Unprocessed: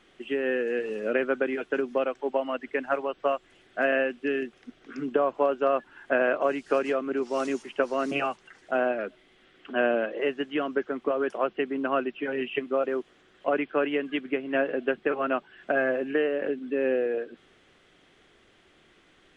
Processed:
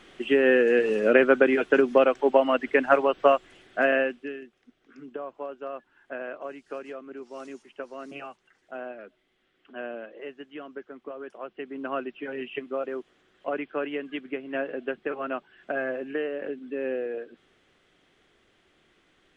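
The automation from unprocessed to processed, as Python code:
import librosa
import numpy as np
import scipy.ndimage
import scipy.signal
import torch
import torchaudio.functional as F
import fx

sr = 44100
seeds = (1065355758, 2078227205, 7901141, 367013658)

y = fx.gain(x, sr, db=fx.line((3.23, 7.5), (4.08, 0.5), (4.4, -12.0), (11.42, -12.0), (11.89, -4.5)))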